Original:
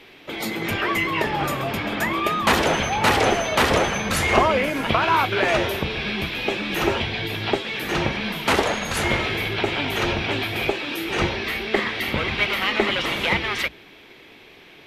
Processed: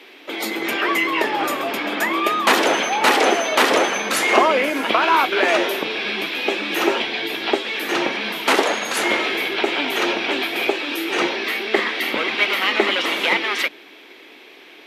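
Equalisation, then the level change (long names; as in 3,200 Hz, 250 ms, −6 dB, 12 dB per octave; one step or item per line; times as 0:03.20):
Chebyshev high-pass filter 280 Hz, order 3
+3.5 dB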